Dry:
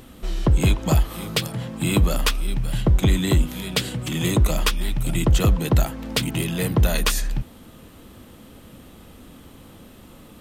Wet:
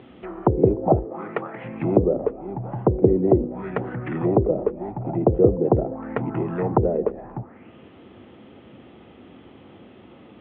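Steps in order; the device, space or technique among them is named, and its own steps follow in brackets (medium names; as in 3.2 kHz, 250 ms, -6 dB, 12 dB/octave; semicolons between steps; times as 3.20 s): 1.04–1.63 s: high-pass 160 Hz -> 350 Hz 12 dB/octave; envelope filter bass rig (touch-sensitive low-pass 470–3800 Hz down, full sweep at -16 dBFS; cabinet simulation 77–2200 Hz, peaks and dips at 84 Hz -7 dB, 160 Hz -4 dB, 370 Hz +7 dB, 750 Hz +4 dB, 1.1 kHz -3 dB, 1.6 kHz -4 dB); trim -1 dB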